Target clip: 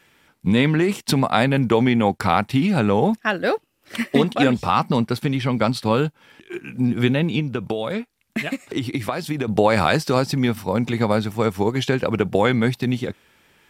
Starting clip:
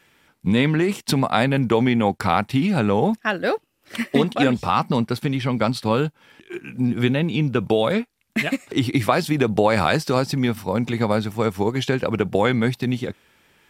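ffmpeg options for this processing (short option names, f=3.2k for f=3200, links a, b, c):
-filter_complex "[0:a]asettb=1/sr,asplit=3[a][b][c];[a]atrim=end=7.394[d];[b]atrim=start=7.39:end=9.48,asetpts=PTS-STARTPTS,afade=t=in:d=0.004:c=qsin,afade=t=out:st=2.086:d=0.004:c=qsin,acompressor=threshold=-22dB:ratio=6[e];[c]atrim=start=9.476[f];[d][e]acrossfade=d=0.004:c1=hsin:c2=qsin[g];[g][f]acrossfade=d=0.004:c1=qsin:c2=hsin,volume=1dB"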